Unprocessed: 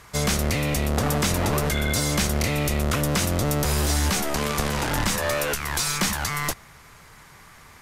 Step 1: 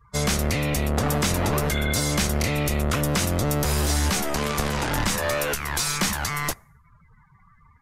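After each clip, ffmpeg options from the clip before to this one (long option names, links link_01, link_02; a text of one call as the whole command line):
ffmpeg -i in.wav -af "afftdn=noise_reduction=33:noise_floor=-42" out.wav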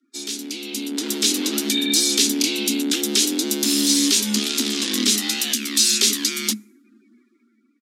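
ffmpeg -i in.wav -af "afreqshift=210,firequalizer=gain_entry='entry(120,0);entry(620,-30);entry(3500,1);entry(14000,-9)':delay=0.05:min_phase=1,dynaudnorm=framelen=210:gausssize=9:maxgain=12.5dB" out.wav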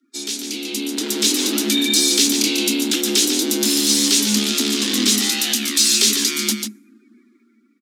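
ffmpeg -i in.wav -filter_complex "[0:a]asplit=2[link_01][link_02];[link_02]asoftclip=type=hard:threshold=-21dB,volume=-8dB[link_03];[link_01][link_03]amix=inputs=2:normalize=0,aecho=1:1:143:0.473" out.wav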